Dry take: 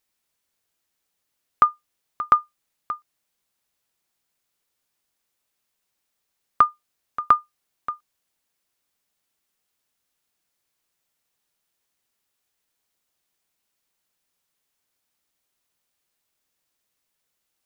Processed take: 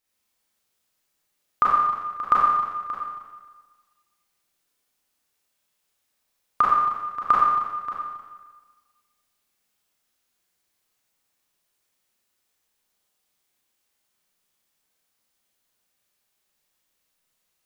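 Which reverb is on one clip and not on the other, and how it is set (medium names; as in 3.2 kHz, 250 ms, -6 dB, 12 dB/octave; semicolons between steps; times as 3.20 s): Schroeder reverb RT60 1.4 s, combs from 30 ms, DRR -6.5 dB; trim -4.5 dB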